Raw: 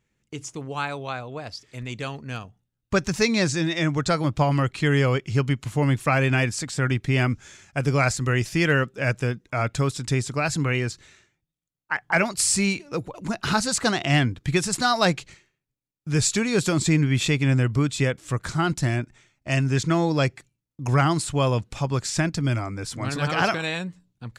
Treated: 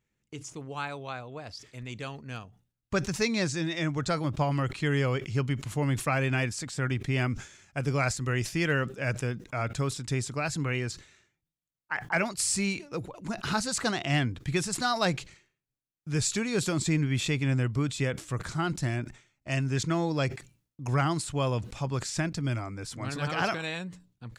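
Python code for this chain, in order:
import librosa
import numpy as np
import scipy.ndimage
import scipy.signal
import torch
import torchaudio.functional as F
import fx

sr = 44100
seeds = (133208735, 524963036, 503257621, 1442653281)

y = fx.sustainer(x, sr, db_per_s=140.0)
y = y * librosa.db_to_amplitude(-6.5)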